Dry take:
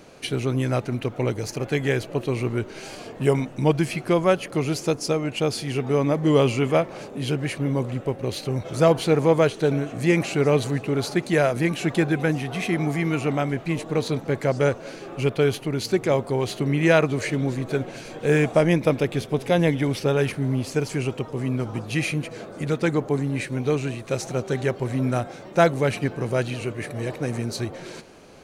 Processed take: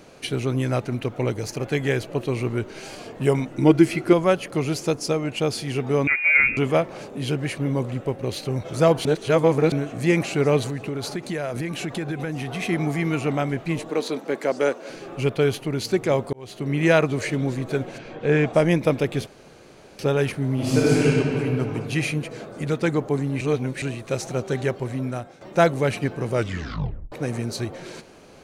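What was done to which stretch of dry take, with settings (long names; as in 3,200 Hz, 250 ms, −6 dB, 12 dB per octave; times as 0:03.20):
0:03.51–0:04.13: hollow resonant body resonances 330/1,400/2,000 Hz, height 11 dB
0:06.07–0:06.57: voice inversion scrambler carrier 2,600 Hz
0:09.05–0:09.72: reverse
0:10.63–0:12.62: downward compressor, threshold −24 dBFS
0:13.89–0:14.90: high-pass filter 230 Hz 24 dB per octave
0:16.33–0:16.81: fade in
0:17.97–0:18.52: low-pass filter 2,700 Hz → 4,800 Hz
0:19.27–0:19.99: fill with room tone
0:20.54–0:21.05: thrown reverb, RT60 2.9 s, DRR −7.5 dB
0:23.41–0:23.82: reverse
0:24.65–0:25.41: fade out, to −11.5 dB
0:26.34: tape stop 0.78 s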